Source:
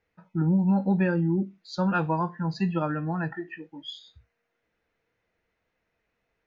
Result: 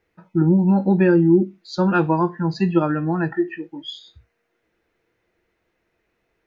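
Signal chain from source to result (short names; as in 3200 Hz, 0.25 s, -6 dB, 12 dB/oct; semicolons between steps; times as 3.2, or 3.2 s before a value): bell 350 Hz +10.5 dB 0.3 oct; gain +5.5 dB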